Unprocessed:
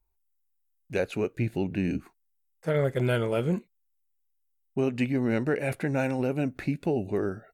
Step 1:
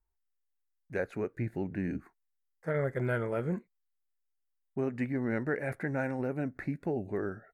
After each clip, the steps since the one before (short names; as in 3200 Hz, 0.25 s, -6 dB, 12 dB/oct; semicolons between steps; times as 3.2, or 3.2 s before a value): resonant high shelf 2300 Hz -7 dB, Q 3; gain -6 dB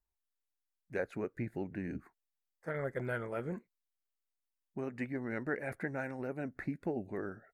harmonic-percussive split percussive +7 dB; gain -8.5 dB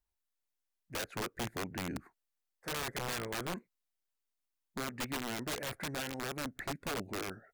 wrapped overs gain 32 dB; gain +1 dB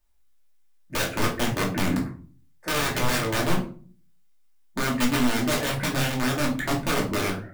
shoebox room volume 290 m³, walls furnished, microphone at 2.6 m; gain +8 dB